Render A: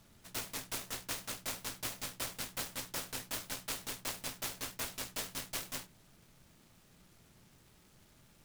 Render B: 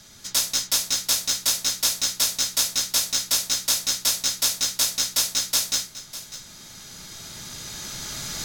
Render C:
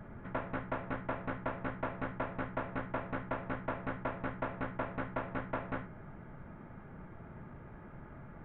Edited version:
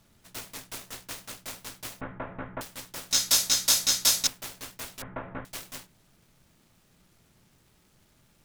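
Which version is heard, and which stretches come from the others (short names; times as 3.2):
A
2.01–2.61 from C
3.11–4.27 from B
5.02–5.45 from C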